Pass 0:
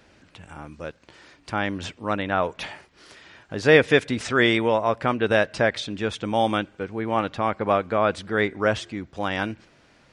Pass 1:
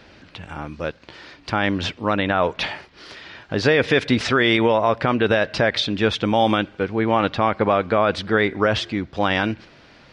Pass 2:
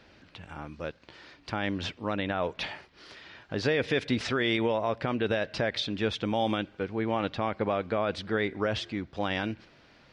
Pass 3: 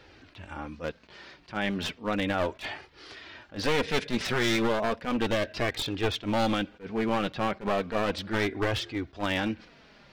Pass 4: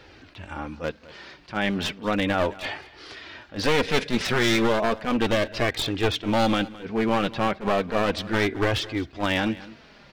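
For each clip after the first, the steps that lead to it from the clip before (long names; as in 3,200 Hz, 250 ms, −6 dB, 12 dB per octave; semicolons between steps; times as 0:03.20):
high shelf with overshoot 6,100 Hz −9.5 dB, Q 1.5; boost into a limiter +13 dB; level −5.5 dB
dynamic equaliser 1,200 Hz, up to −4 dB, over −29 dBFS, Q 1.2; level −9 dB
wavefolder on the positive side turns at −29 dBFS; flanger 0.34 Hz, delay 2.2 ms, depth 3.4 ms, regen −31%; level that may rise only so fast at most 260 dB per second; level +6.5 dB
single-tap delay 213 ms −19 dB; level +4.5 dB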